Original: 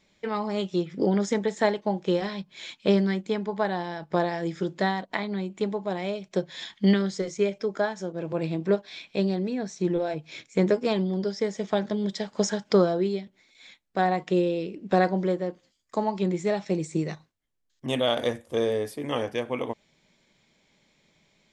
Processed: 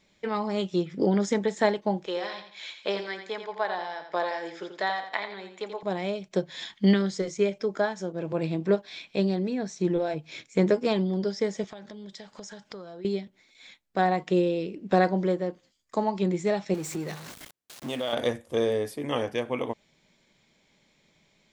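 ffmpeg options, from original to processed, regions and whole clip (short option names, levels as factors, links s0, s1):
-filter_complex "[0:a]asettb=1/sr,asplit=3[s0][s1][s2];[s0]atrim=end=2.064[s3];[s1]atrim=start=2.06:end=5.83,asetpts=PTS-STARTPTS,afade=t=in:d=0.004:c=qsin,afade=t=out:st=3.766:d=0.004:c=qsin,highpass=600,lowpass=5900,aecho=1:1:85|170|255|340:0.376|0.117|0.0361|0.0112,atrim=end_sample=166257[s4];[s2]atrim=start=5.826[s5];[s3][s4]acrossfade=d=0.004:c1=hsin:c2=qsin[s6];[s6][s5]acrossfade=d=0.004:c1=qsin:c2=hsin,asettb=1/sr,asplit=3[s7][s8][s9];[s7]atrim=end=11.644[s10];[s8]atrim=start=11.64:end=13.05,asetpts=PTS-STARTPTS,afade=t=in:d=0.004:c=qsin,afade=t=out:st=1.406:d=0.004:c=qsin,equalizer=f=270:t=o:w=2.9:g=-5.5,acompressor=threshold=0.01:ratio=5:attack=3.2:release=140:knee=1:detection=peak[s11];[s9]atrim=start=13.046[s12];[s10][s11]acrossfade=d=0.004:c1=hsin:c2=qsin[s13];[s13][s12]acrossfade=d=0.004:c1=qsin:c2=hsin,asettb=1/sr,asplit=3[s14][s15][s16];[s14]atrim=end=16.744[s17];[s15]atrim=start=16.74:end=18.13,asetpts=PTS-STARTPTS,afade=t=in:d=0.004:c=qsin,afade=t=out:st=1.386:d=0.004:c=qsin,aeval=exprs='val(0)+0.5*0.0188*sgn(val(0))':c=same,highpass=f=210:p=1,acompressor=threshold=0.0282:ratio=2:attack=3.2:release=140:knee=1:detection=peak[s18];[s16]atrim=start=18.126[s19];[s17][s18]acrossfade=d=0.004:c1=hsin:c2=qsin[s20];[s20][s19]acrossfade=d=0.004:c1=qsin:c2=hsin"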